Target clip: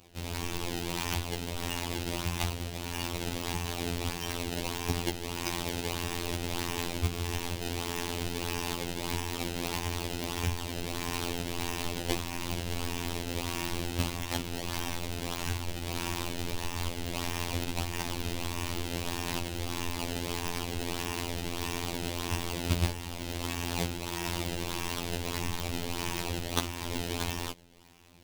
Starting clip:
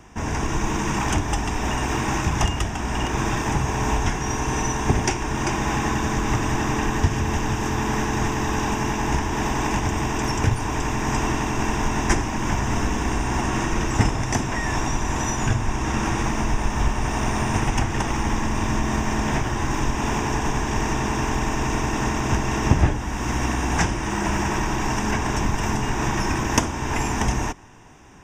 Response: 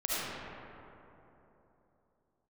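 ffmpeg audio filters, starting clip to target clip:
-af "acrusher=samples=22:mix=1:aa=0.000001:lfo=1:lforange=35.2:lforate=1.6,afftfilt=real='hypot(re,im)*cos(PI*b)':imag='0':win_size=2048:overlap=0.75,highshelf=f=2.1k:t=q:w=1.5:g=6.5,volume=-8dB"

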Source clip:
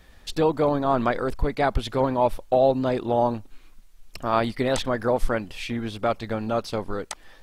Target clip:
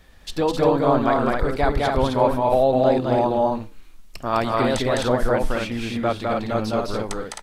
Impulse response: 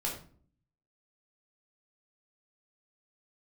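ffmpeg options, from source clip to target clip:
-af "aecho=1:1:207|262.4:0.794|0.631,flanger=delay=7.1:depth=2.5:regen=-88:speed=1.1:shape=triangular,volume=5dB"

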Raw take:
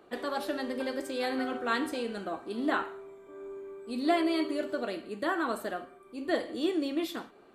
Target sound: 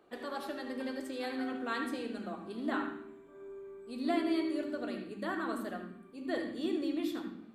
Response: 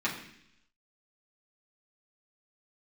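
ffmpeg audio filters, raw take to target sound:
-filter_complex "[0:a]asplit=2[a][b];[b]asubboost=boost=7:cutoff=230[c];[1:a]atrim=start_sample=2205,adelay=73[d];[c][d]afir=irnorm=-1:irlink=0,volume=-14dB[e];[a][e]amix=inputs=2:normalize=0,volume=-7dB"

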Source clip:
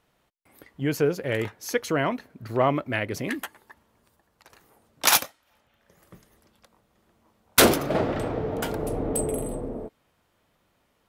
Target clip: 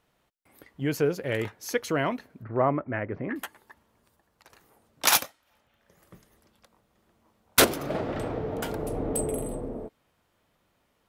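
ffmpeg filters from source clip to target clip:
-filter_complex "[0:a]asettb=1/sr,asplit=3[a][b][c];[a]atrim=end=2.434[d];[b]atrim=start=2.43:end=3.36,asetpts=PTS-STARTPTS,afade=t=in:d=0.004:c=qsin,afade=t=out:st=0.926:d=0.004:c=qsin,lowpass=f=1.8k:w=0.5412,lowpass=f=1.8k:w=1.3066[e];[c]atrim=start=3.356[f];[d][e]acrossfade=d=0.004:c1=hsin:c2=qsin[g];[g][f]acrossfade=d=0.004:c1=qsin:c2=hsin,asettb=1/sr,asplit=3[h][i][j];[h]atrim=end=7.644[k];[i]atrim=start=7.64:end=8.95,asetpts=PTS-STARTPTS,afade=t=in:d=0.004:c=qsin,afade=t=out:st=1.306:d=0.004:c=qsin,acompressor=threshold=-24dB:ratio=6[l];[j]atrim=start=8.946[m];[k][l]acrossfade=d=0.004:c1=hsin:c2=qsin[n];[n][m]acrossfade=d=0.004:c1=qsin:c2=hsin,volume=-2dB"

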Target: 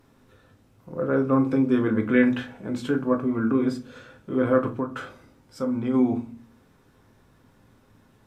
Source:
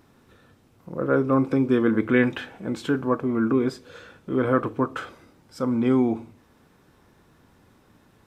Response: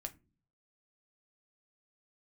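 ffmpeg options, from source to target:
-filter_complex "[0:a]asplit=3[a][b][c];[a]afade=t=out:st=4.69:d=0.02[d];[b]acompressor=threshold=-23dB:ratio=6,afade=t=in:st=4.69:d=0.02,afade=t=out:st=5.93:d=0.02[e];[c]afade=t=in:st=5.93:d=0.02[f];[d][e][f]amix=inputs=3:normalize=0[g];[1:a]atrim=start_sample=2205,asetrate=35280,aresample=44100[h];[g][h]afir=irnorm=-1:irlink=0"

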